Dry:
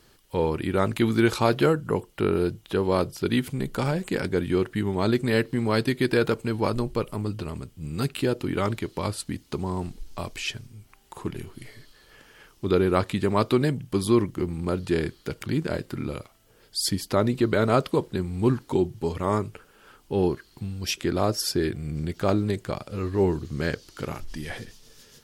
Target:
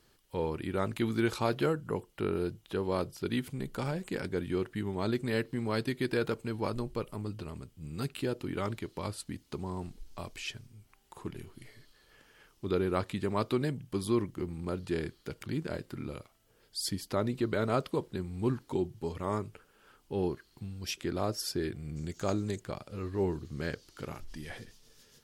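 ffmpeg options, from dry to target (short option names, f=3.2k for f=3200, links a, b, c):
-filter_complex "[0:a]asettb=1/sr,asplit=3[a][b][c];[a]atrim=end=21.964[d];[b]atrim=start=21.96:end=22.6,asetpts=PTS-STARTPTS,afade=t=in:d=0.004:c=qsin,afade=t=out:st=0.636:d=0.004:c=qsin,equalizer=f=6.7k:w=2.5:g=15[e];[c]atrim=start=22.596[f];[d][e]acrossfade=d=0.004:c1=hsin:c2=qsin[g];[g][f]acrossfade=d=0.004:c1=qsin:c2=hsin,volume=-8.5dB"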